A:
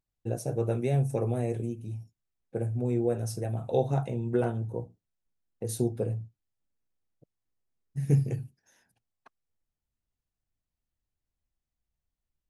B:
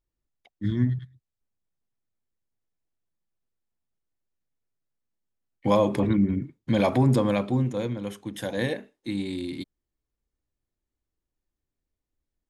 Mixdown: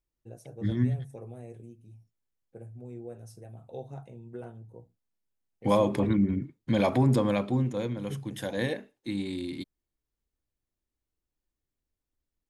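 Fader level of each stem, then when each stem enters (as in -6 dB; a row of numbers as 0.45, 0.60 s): -14.5, -2.5 dB; 0.00, 0.00 s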